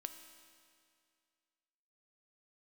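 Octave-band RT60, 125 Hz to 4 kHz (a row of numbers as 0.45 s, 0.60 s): 2.2 s, 2.2 s, 2.2 s, 2.2 s, 2.2 s, 2.1 s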